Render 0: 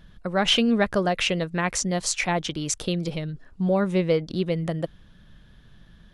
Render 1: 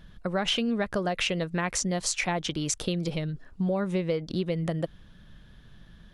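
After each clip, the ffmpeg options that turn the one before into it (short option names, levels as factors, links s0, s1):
-af "acompressor=threshold=0.0631:ratio=6"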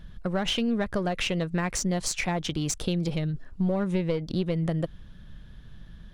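-filter_complex "[0:a]asplit=2[s0][s1];[s1]aeval=exprs='clip(val(0),-1,0.0237)':c=same,volume=0.631[s2];[s0][s2]amix=inputs=2:normalize=0,lowshelf=f=160:g=7.5,volume=0.596"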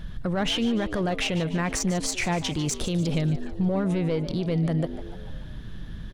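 -filter_complex "[0:a]asplit=2[s0][s1];[s1]acompressor=threshold=0.0224:ratio=6,volume=0.944[s2];[s0][s2]amix=inputs=2:normalize=0,alimiter=limit=0.1:level=0:latency=1:release=24,asplit=6[s3][s4][s5][s6][s7][s8];[s4]adelay=147,afreqshift=90,volume=0.211[s9];[s5]adelay=294,afreqshift=180,volume=0.106[s10];[s6]adelay=441,afreqshift=270,volume=0.0531[s11];[s7]adelay=588,afreqshift=360,volume=0.0263[s12];[s8]adelay=735,afreqshift=450,volume=0.0132[s13];[s3][s9][s10][s11][s12][s13]amix=inputs=6:normalize=0,volume=1.33"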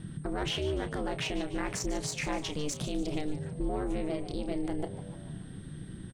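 -filter_complex "[0:a]aeval=exprs='val(0)+0.002*sin(2*PI*8700*n/s)':c=same,aeval=exprs='val(0)*sin(2*PI*150*n/s)':c=same,asplit=2[s0][s1];[s1]adelay=31,volume=0.251[s2];[s0][s2]amix=inputs=2:normalize=0,volume=0.596"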